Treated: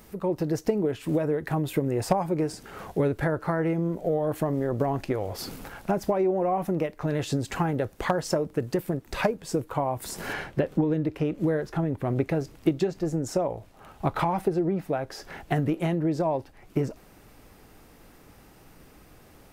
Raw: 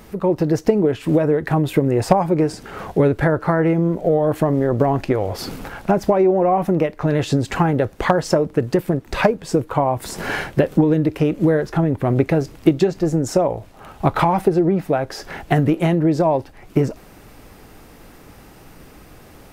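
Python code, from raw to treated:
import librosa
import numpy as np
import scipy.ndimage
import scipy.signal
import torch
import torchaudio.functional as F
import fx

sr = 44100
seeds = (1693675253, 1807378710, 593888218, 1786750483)

y = fx.high_shelf(x, sr, hz=6300.0, db=fx.steps((0.0, 8.0), (10.32, -5.5), (11.37, 2.0)))
y = y * 10.0 ** (-9.0 / 20.0)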